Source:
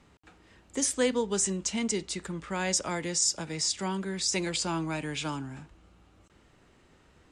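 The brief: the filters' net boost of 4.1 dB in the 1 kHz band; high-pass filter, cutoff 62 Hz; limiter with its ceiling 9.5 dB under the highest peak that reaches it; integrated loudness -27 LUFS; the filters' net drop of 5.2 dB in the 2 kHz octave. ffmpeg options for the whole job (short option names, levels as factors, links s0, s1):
-af "highpass=62,equalizer=f=1000:t=o:g=7,equalizer=f=2000:t=o:g=-9,volume=2.11,alimiter=limit=0.133:level=0:latency=1"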